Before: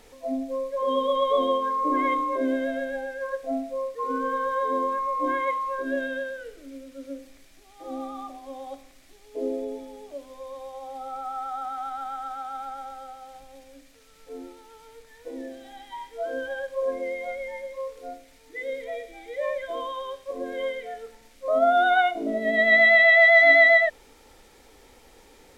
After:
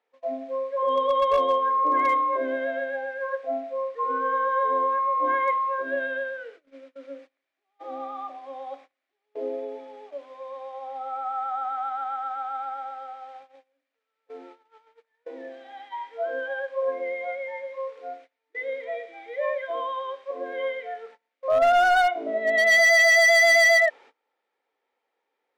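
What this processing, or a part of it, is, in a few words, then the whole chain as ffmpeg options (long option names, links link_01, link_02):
walkie-talkie: -af "highpass=560,lowpass=2400,asoftclip=type=hard:threshold=-19dB,agate=range=-25dB:threshold=-50dB:ratio=16:detection=peak,volume=4dB"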